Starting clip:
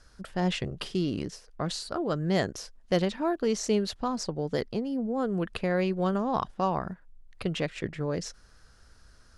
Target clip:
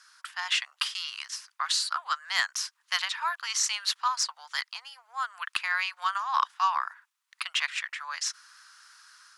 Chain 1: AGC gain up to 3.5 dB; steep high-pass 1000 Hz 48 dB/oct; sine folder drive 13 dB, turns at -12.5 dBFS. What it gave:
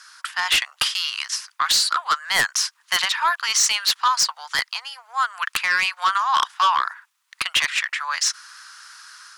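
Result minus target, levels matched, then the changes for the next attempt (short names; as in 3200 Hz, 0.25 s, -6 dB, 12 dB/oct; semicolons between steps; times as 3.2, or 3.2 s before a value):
sine folder: distortion +19 dB
change: sine folder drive 2 dB, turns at -12.5 dBFS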